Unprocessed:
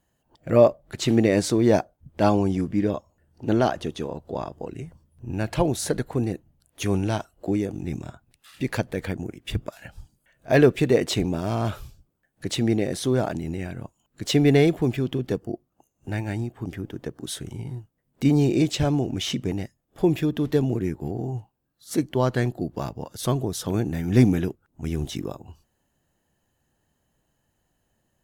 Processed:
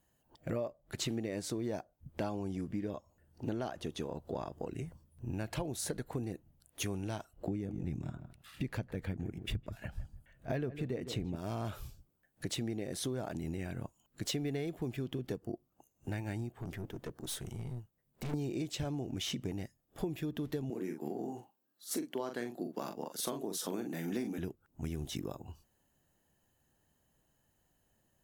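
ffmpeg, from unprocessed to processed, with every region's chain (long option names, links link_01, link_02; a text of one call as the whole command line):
ffmpeg -i in.wav -filter_complex "[0:a]asettb=1/sr,asplit=3[link_01][link_02][link_03];[link_01]atrim=end=7.334[link_04];[link_02]atrim=start=7.33:end=11.36,asetpts=PTS-STARTPTS,afade=type=in:duration=0.004:curve=qsin,afade=type=out:start_time=4.026:duration=0.004:curve=qsin,bass=frequency=250:gain=7,treble=frequency=4000:gain=-6,asplit=2[link_05][link_06];[link_06]adelay=158,lowpass=frequency=1300:poles=1,volume=-13.5dB,asplit=2[link_07][link_08];[link_08]adelay=158,lowpass=frequency=1300:poles=1,volume=0.16[link_09];[link_05][link_07][link_09]amix=inputs=3:normalize=0,atrim=end_sample=177723[link_10];[link_03]atrim=start=11.356[link_11];[link_04][link_10]acrossfade=duration=0.004:curve1=hsin:curve2=qsin[link_12];[link_12][link_11]acrossfade=duration=0.004:curve1=qsin:curve2=hsin,asettb=1/sr,asplit=3[link_13][link_14][link_15];[link_13]atrim=end=16.504[link_16];[link_14]atrim=start=16.5:end=18.34,asetpts=PTS-STARTPTS,afade=type=in:duration=0.004:curve=qsin,afade=type=out:start_time=1.836:duration=0.004:curve=qsin,bandreject=frequency=280:width=5.3,aeval=exprs='(tanh(39.8*val(0)+0.45)-tanh(0.45))/39.8':channel_layout=same[link_17];[link_15]atrim=start=18.336[link_18];[link_16][link_17]acrossfade=duration=0.004:curve1=hsin:curve2=qsin[link_19];[link_19][link_18]acrossfade=duration=0.004:curve1=qsin:curve2=hsin,asettb=1/sr,asplit=3[link_20][link_21][link_22];[link_20]atrim=end=20.704[link_23];[link_21]atrim=start=20.7:end=24.38,asetpts=PTS-STARTPTS,afade=type=in:duration=0.004:curve=qsin,afade=type=out:start_time=3.676:duration=0.004:curve=qsin,highpass=frequency=210:width=0.5412,highpass=frequency=210:width=1.3066,asplit=2[link_24][link_25];[link_25]adelay=42,volume=-7dB[link_26];[link_24][link_26]amix=inputs=2:normalize=0,atrim=end_sample=162288[link_27];[link_22]atrim=start=24.376[link_28];[link_23][link_27]acrossfade=duration=0.004:curve1=hsin:curve2=qsin[link_29];[link_29][link_28]acrossfade=duration=0.004:curve1=qsin:curve2=hsin,highshelf=frequency=11000:gain=7.5,acompressor=threshold=-30dB:ratio=8,volume=-4dB" out.wav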